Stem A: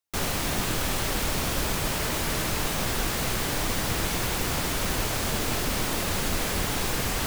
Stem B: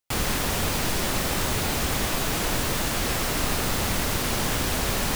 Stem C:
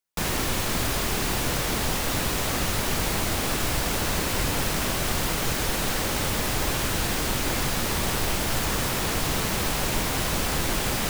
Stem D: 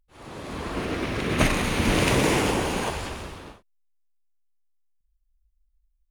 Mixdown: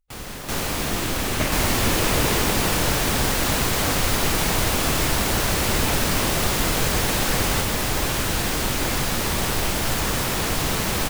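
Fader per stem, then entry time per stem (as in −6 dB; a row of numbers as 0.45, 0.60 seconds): +1.5, −9.5, +2.5, −5.0 decibels; 0.35, 0.00, 1.35, 0.00 seconds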